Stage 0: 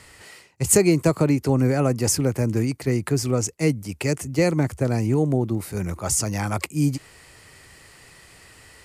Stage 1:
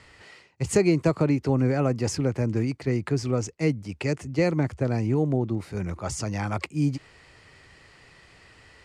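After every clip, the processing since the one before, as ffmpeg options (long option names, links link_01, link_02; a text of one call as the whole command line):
ffmpeg -i in.wav -af "lowpass=4700,volume=-3dB" out.wav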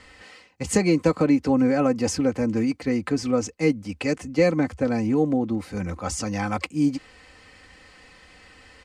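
ffmpeg -i in.wav -af "aecho=1:1:3.9:0.72,volume=1.5dB" out.wav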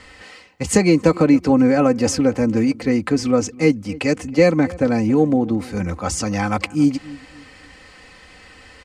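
ffmpeg -i in.wav -filter_complex "[0:a]asplit=2[link_01][link_02];[link_02]adelay=274,lowpass=frequency=1400:poles=1,volume=-19.5dB,asplit=2[link_03][link_04];[link_04]adelay=274,lowpass=frequency=1400:poles=1,volume=0.33,asplit=2[link_05][link_06];[link_06]adelay=274,lowpass=frequency=1400:poles=1,volume=0.33[link_07];[link_01][link_03][link_05][link_07]amix=inputs=4:normalize=0,volume=5.5dB" out.wav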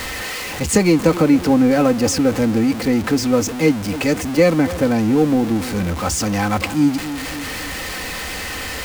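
ffmpeg -i in.wav -af "aeval=exprs='val(0)+0.5*0.0891*sgn(val(0))':channel_layout=same,volume=-1dB" out.wav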